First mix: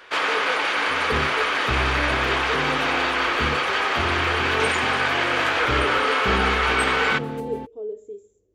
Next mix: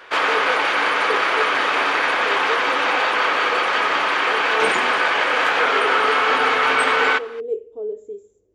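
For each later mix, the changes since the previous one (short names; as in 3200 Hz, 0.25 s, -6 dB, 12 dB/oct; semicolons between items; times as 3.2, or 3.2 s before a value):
second sound: muted; master: add bell 820 Hz +5 dB 3 oct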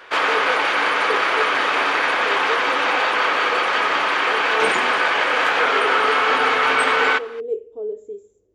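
none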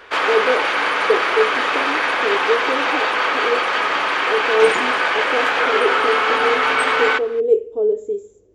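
speech +10.0 dB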